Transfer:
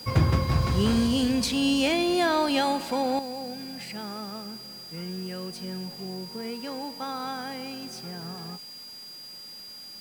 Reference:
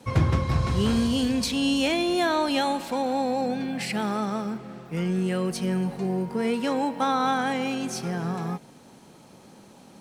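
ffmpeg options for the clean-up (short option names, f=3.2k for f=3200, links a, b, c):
-af "bandreject=f=4.8k:w=30,afwtdn=0.0025,asetnsamples=n=441:p=0,asendcmd='3.19 volume volume 10dB',volume=0dB"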